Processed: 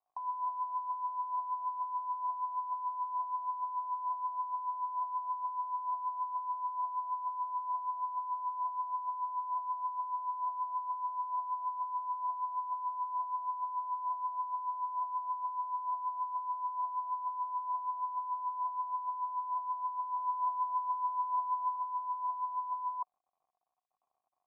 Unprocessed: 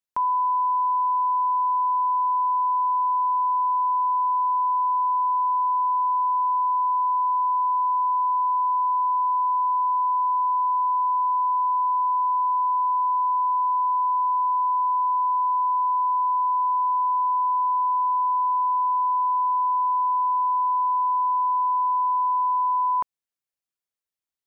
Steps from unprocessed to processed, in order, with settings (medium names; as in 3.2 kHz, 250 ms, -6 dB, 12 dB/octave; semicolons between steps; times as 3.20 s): 20.16–21.76 s: peaking EQ 850 Hz +6.5 dB 0.39 oct; phaser 1.1 Hz, delay 3.1 ms, feedback 47%; crackle 120 per s -40 dBFS; cascade formant filter a; trim -6 dB